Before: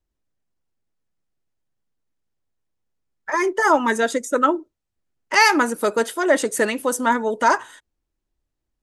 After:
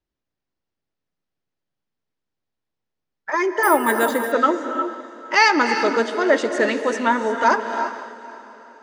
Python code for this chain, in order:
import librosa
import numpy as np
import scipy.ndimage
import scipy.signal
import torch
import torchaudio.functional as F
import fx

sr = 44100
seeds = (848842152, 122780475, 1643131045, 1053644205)

p1 = scipy.signal.sosfilt(scipy.signal.butter(4, 5600.0, 'lowpass', fs=sr, output='sos'), x)
p2 = fx.low_shelf(p1, sr, hz=76.0, db=-11.0)
p3 = p2 + fx.echo_diffused(p2, sr, ms=484, feedback_pct=41, wet_db=-16, dry=0)
p4 = fx.rev_gated(p3, sr, seeds[0], gate_ms=380, shape='rising', drr_db=7.0)
y = fx.resample_bad(p4, sr, factor=4, down='filtered', up='hold', at=(3.63, 4.32))